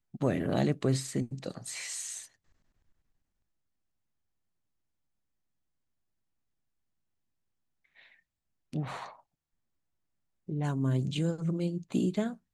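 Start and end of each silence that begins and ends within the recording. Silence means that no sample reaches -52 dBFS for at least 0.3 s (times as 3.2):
2.27–7.96
8.14–8.73
9.2–10.48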